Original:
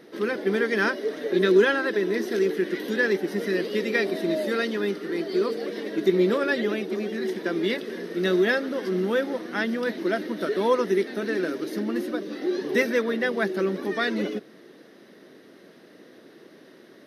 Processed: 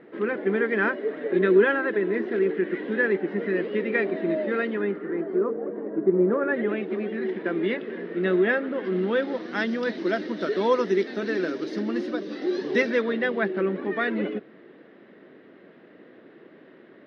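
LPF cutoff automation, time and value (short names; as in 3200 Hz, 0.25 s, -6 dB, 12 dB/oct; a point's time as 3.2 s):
LPF 24 dB/oct
4.73 s 2500 Hz
5.61 s 1200 Hz
6.18 s 1200 Hz
6.81 s 2700 Hz
8.73 s 2700 Hz
9.59 s 5600 Hz
12.62 s 5600 Hz
13.61 s 2800 Hz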